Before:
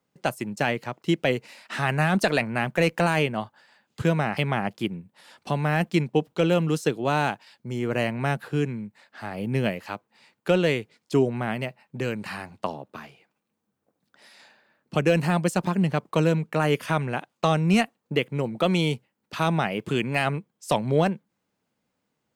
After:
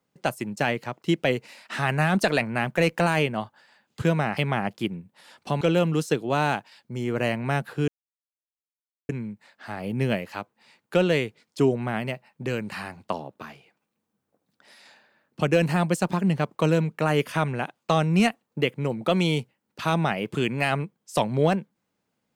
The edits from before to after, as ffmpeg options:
-filter_complex "[0:a]asplit=3[a][b][c];[a]atrim=end=5.612[d];[b]atrim=start=6.358:end=8.63,asetpts=PTS-STARTPTS,afade=t=out:st=2.268:d=0.004:c=hsin,apad=pad_dur=1.21[e];[c]atrim=start=8.63,asetpts=PTS-STARTPTS,afade=t=in:d=0.004:c=hsin[f];[e][f]concat=n=2:v=0:a=1[g];[d][g]acrossfade=d=0.004:c1=hsin:c2=hsin"

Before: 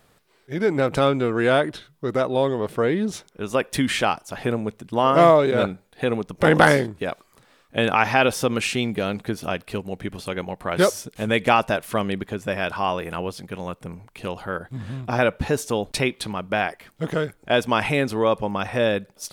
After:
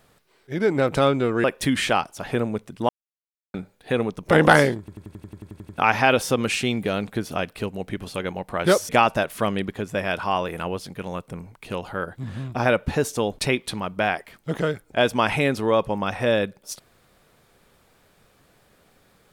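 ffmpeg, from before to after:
-filter_complex "[0:a]asplit=16[a][b][c][d][e][f][g][h][i][j][k][l][m][n][o][p];[a]atrim=end=1.442[q];[b]atrim=start=3.558:end=5.01,asetpts=PTS-STARTPTS,afade=t=out:st=1.448:d=0.004:c=hsin[r];[c]atrim=start=5.01:end=5.66,asetpts=PTS-STARTPTS,volume=0[s];[d]atrim=start=5.66:end=7.002,asetpts=PTS-STARTPTS,afade=t=in:d=0.004:c=hsin[t];[e]atrim=start=6.908:end=7.002[u];[f]atrim=start=6.908:end=7.002[v];[g]atrim=start=6.908:end=7.002[w];[h]atrim=start=6.908:end=7.002[x];[i]atrim=start=6.908:end=7.002[y];[j]atrim=start=6.908:end=7.002[z];[k]atrim=start=6.908:end=7.002[aa];[l]atrim=start=6.908:end=7.002[ab];[m]atrim=start=6.908:end=7.002[ac];[n]atrim=start=6.908:end=7.002[ad];[o]atrim=start=7.898:end=11.012[ae];[p]atrim=start=11.418[af];[r][s][t]concat=n=3:v=0:a=1[ag];[q][ag]acrossfade=d=0.004:c1=hsin:c2=hsin[ah];[ah][u]acrossfade=d=0.004:c1=hsin:c2=hsin[ai];[ai][v]acrossfade=d=0.004:c1=hsin:c2=hsin[aj];[aj][w]acrossfade=d=0.004:c1=hsin:c2=hsin[ak];[ak][x]acrossfade=d=0.004:c1=hsin:c2=hsin[al];[al][y]acrossfade=d=0.004:c1=hsin:c2=hsin[am];[am][z]acrossfade=d=0.004:c1=hsin:c2=hsin[an];[an][aa]acrossfade=d=0.004:c1=hsin:c2=hsin[ao];[ao][ab]acrossfade=d=0.004:c1=hsin:c2=hsin[ap];[ap][ac]acrossfade=d=0.004:c1=hsin:c2=hsin[aq];[aq][ad]acrossfade=d=0.004:c1=hsin:c2=hsin[ar];[ar][ae]acrossfade=d=0.004:c1=hsin:c2=hsin[as];[as][af]acrossfade=d=0.004:c1=hsin:c2=hsin"

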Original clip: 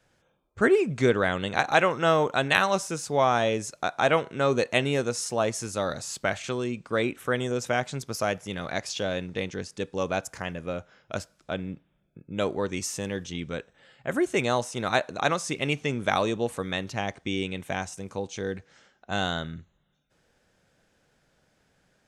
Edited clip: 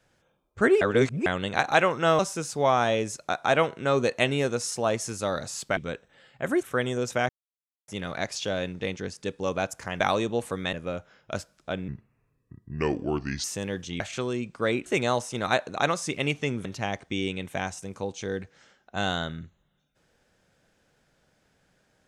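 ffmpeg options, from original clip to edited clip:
-filter_complex "[0:a]asplit=15[a][b][c][d][e][f][g][h][i][j][k][l][m][n][o];[a]atrim=end=0.812[p];[b]atrim=start=0.808:end=1.262,asetpts=PTS-STARTPTS,areverse[q];[c]atrim=start=1.258:end=2.192[r];[d]atrim=start=2.728:end=6.312[s];[e]atrim=start=13.418:end=14.282[t];[f]atrim=start=7.168:end=7.83,asetpts=PTS-STARTPTS,afade=t=out:st=0.658:d=0.004:c=hsin[u];[g]atrim=start=7.83:end=8.42,asetpts=PTS-STARTPTS,volume=0[v];[h]atrim=start=8.42:end=10.542,asetpts=PTS-STARTPTS,afade=t=in:d=0.004:c=hsin[w];[i]atrim=start=16.068:end=16.802[x];[j]atrim=start=10.538:end=11.694[y];[k]atrim=start=11.69:end=12.86,asetpts=PTS-STARTPTS,asetrate=33075,aresample=44100[z];[l]atrim=start=12.856:end=13.422[aa];[m]atrim=start=6.308:end=7.172[ab];[n]atrim=start=14.278:end=16.072[ac];[o]atrim=start=16.798[ad];[p][q]acrossfade=d=0.004:c1=hsin:c2=hsin[ae];[ae][r]acrossfade=d=0.004:c1=hsin:c2=hsin[af];[af][s]acrossfade=d=0.004:c1=hsin:c2=hsin[ag];[ag][t]acrossfade=d=0.004:c1=hsin:c2=hsin[ah];[u][v][w]concat=n=3:v=0:a=1[ai];[ah][ai]acrossfade=d=0.004:c1=hsin:c2=hsin[aj];[aj][x]acrossfade=d=0.004:c1=hsin:c2=hsin[ak];[ak][y]acrossfade=d=0.004:c1=hsin:c2=hsin[al];[al][z]acrossfade=d=0.004:c1=hsin:c2=hsin[am];[am][aa]acrossfade=d=0.004:c1=hsin:c2=hsin[an];[an][ab]acrossfade=d=0.004:c1=hsin:c2=hsin[ao];[ao][ac]acrossfade=d=0.004:c1=hsin:c2=hsin[ap];[ap][ad]acrossfade=d=0.004:c1=hsin:c2=hsin"

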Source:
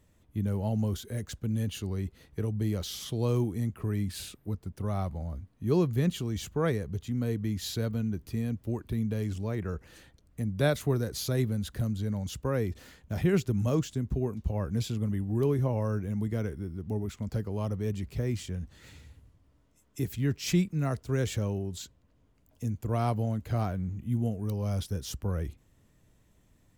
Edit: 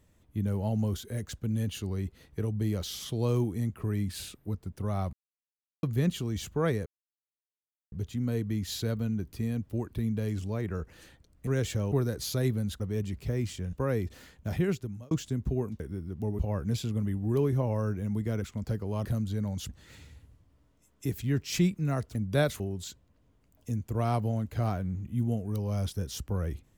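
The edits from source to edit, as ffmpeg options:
-filter_complex "[0:a]asplit=16[a][b][c][d][e][f][g][h][i][j][k][l][m][n][o][p];[a]atrim=end=5.13,asetpts=PTS-STARTPTS,afade=t=out:st=5.126:d=0.004:c=hsin[q];[b]atrim=start=5.13:end=5.83,asetpts=PTS-STARTPTS,volume=0[r];[c]atrim=start=5.83:end=6.86,asetpts=PTS-STARTPTS,afade=t=in:d=0.004:c=hsin,afade=t=out:st=1.026:d=0.004:c=hsin,apad=pad_dur=1.06[s];[d]atrim=start=6.86:end=10.412,asetpts=PTS-STARTPTS,afade=t=in:d=0.004:c=hsin[t];[e]atrim=start=21.088:end=21.542[u];[f]atrim=start=10.858:end=11.742[v];[g]atrim=start=17.698:end=18.632[w];[h]atrim=start=12.378:end=13.76,asetpts=PTS-STARTPTS,afade=t=out:st=0.752:d=0.63[x];[i]atrim=start=13.76:end=14.452,asetpts=PTS-STARTPTS,afade=t=in:d=0.004:c=hsin[y];[j]atrim=start=16.478:end=17.072[z];[k]atrim=start=14.448:end=16.482[aa];[l]atrim=start=17.068:end=17.702[ab];[m]atrim=start=11.738:end=12.382[ac];[n]atrim=start=18.628:end=21.092[ad];[o]atrim=start=10.408:end=10.862[ae];[p]atrim=start=21.538[af];[q][r][s][t]concat=n=4:v=0:a=1[ag];[ag][u]acrossfade=d=0.004:c1=hsin:c2=hsin[ah];[ah][v]acrossfade=d=0.004:c1=hsin:c2=hsin[ai];[ai][w]acrossfade=d=0.004:c1=hsin:c2=hsin[aj];[x][y]concat=n=2:v=0:a=1[ak];[aj][ak]acrossfade=d=0.004:c1=hsin:c2=hsin[al];[al][z]acrossfade=d=0.004:c1=hsin:c2=hsin[am];[am][aa]acrossfade=d=0.004:c1=hsin:c2=hsin[an];[an][ab]acrossfade=d=0.004:c1=hsin:c2=hsin[ao];[ao][ac]acrossfade=d=0.004:c1=hsin:c2=hsin[ap];[ap][ad]acrossfade=d=0.004:c1=hsin:c2=hsin[aq];[aq][ae]acrossfade=d=0.004:c1=hsin:c2=hsin[ar];[ar][af]acrossfade=d=0.004:c1=hsin:c2=hsin"

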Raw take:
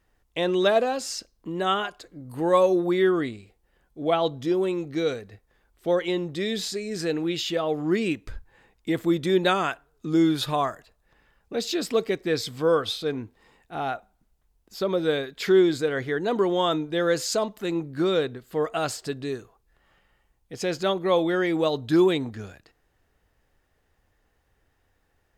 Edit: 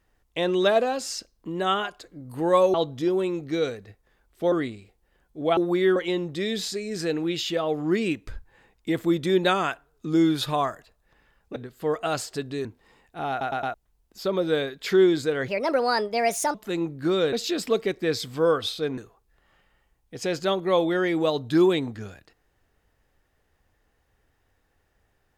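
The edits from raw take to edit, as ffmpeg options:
-filter_complex "[0:a]asplit=15[a][b][c][d][e][f][g][h][i][j][k][l][m][n][o];[a]atrim=end=2.742[p];[b]atrim=start=4.178:end=5.962[q];[c]atrim=start=3.128:end=4.182[r];[d]atrim=start=2.738:end=3.132[s];[e]atrim=start=5.958:end=11.562[t];[f]atrim=start=18.268:end=19.362[u];[g]atrim=start=13.208:end=13.972[v];[h]atrim=start=13.858:end=13.972[w];[i]atrim=start=13.858:end=13.972[x];[j]atrim=start=13.858:end=13.972[y];[k]atrim=start=14.298:end=16.044[z];[l]atrim=start=16.04:end=17.49,asetpts=PTS-STARTPTS,asetrate=59976,aresample=44100,atrim=end_sample=47018,asetpts=PTS-STARTPTS[aa];[m]atrim=start=17.486:end=18.272[ab];[n]atrim=start=11.558:end=13.212[ac];[o]atrim=start=19.358[ad];[p][q]acrossfade=d=0.004:c1=hsin:c2=hsin[ae];[ae][r]acrossfade=d=0.004:c1=hsin:c2=hsin[af];[af][s]acrossfade=d=0.004:c1=hsin:c2=hsin[ag];[ag][t]acrossfade=d=0.004:c1=hsin:c2=hsin[ah];[ah][u]acrossfade=d=0.004:c1=hsin:c2=hsin[ai];[ai][v]acrossfade=d=0.004:c1=hsin:c2=hsin[aj];[aj][w]acrossfade=d=0.004:c1=hsin:c2=hsin[ak];[ak][x]acrossfade=d=0.004:c1=hsin:c2=hsin[al];[al][y]acrossfade=d=0.004:c1=hsin:c2=hsin[am];[am][z]acrossfade=d=0.004:c1=hsin:c2=hsin[an];[an][aa]acrossfade=d=0.004:c1=hsin:c2=hsin[ao];[ao][ab]acrossfade=d=0.004:c1=hsin:c2=hsin[ap];[ap][ac]acrossfade=d=0.004:c1=hsin:c2=hsin[aq];[aq][ad]acrossfade=d=0.004:c1=hsin:c2=hsin"

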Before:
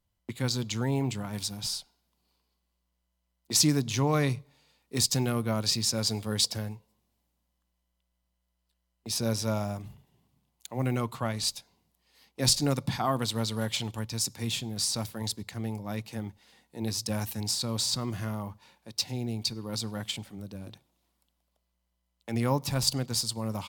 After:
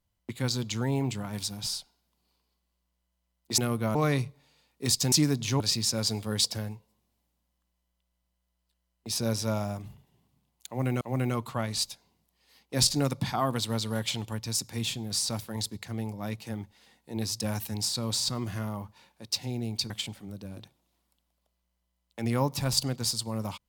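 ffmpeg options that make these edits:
-filter_complex "[0:a]asplit=7[a][b][c][d][e][f][g];[a]atrim=end=3.582[h];[b]atrim=start=5.228:end=5.602[i];[c]atrim=start=4.058:end=5.232[j];[d]atrim=start=3.578:end=4.062[k];[e]atrim=start=5.598:end=11.012[l];[f]atrim=start=10.668:end=19.562[m];[g]atrim=start=19.998[n];[h][i]acrossfade=d=0.004:c1=hsin:c2=hsin[o];[o][j]acrossfade=d=0.004:c1=hsin:c2=hsin[p];[p][k]acrossfade=d=0.004:c1=hsin:c2=hsin[q];[q][l]acrossfade=d=0.004:c1=hsin:c2=hsin[r];[r][m]acrossfade=d=0.004:c1=hsin:c2=hsin[s];[s][n]acrossfade=d=0.004:c1=hsin:c2=hsin"

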